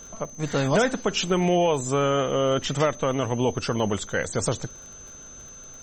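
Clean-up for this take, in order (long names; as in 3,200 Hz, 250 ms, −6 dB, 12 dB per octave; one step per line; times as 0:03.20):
click removal
notch filter 6,200 Hz, Q 30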